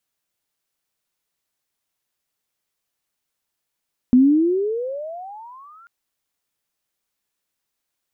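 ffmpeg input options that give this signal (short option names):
-f lavfi -i "aevalsrc='pow(10,(-8-36.5*t/1.74)/20)*sin(2*PI*244*1.74/(30.5*log(2)/12)*(exp(30.5*log(2)/12*t/1.74)-1))':d=1.74:s=44100"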